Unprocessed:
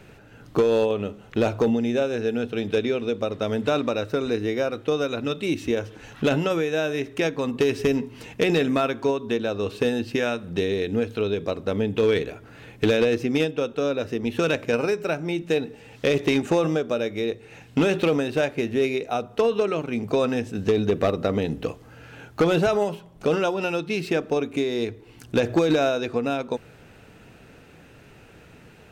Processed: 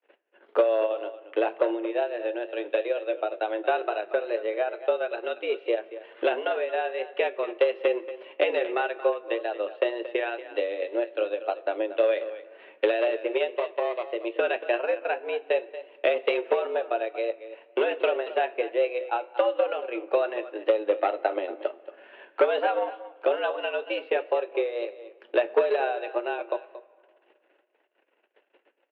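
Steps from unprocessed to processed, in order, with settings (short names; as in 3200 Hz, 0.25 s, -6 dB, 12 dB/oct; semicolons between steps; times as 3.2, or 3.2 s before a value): 13.55–14.07 minimum comb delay 0.33 ms; gate -46 dBFS, range -30 dB; transient shaper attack +5 dB, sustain -8 dB; flange 0.18 Hz, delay 8.7 ms, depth 1.4 ms, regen -65%; mistuned SSB +110 Hz 250–3100 Hz; echo 0.231 s -14.5 dB; on a send at -19.5 dB: reverb RT60 2.0 s, pre-delay 6 ms; on the sum: wow and flutter 28 cents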